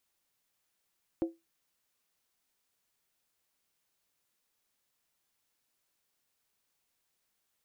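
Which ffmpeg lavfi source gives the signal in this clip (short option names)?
-f lavfi -i "aevalsrc='0.0668*pow(10,-3*t/0.21)*sin(2*PI*332*t)+0.0211*pow(10,-3*t/0.166)*sin(2*PI*529.2*t)+0.00668*pow(10,-3*t/0.144)*sin(2*PI*709.2*t)+0.00211*pow(10,-3*t/0.139)*sin(2*PI*762.3*t)+0.000668*pow(10,-3*t/0.129)*sin(2*PI*880.8*t)':d=0.63:s=44100"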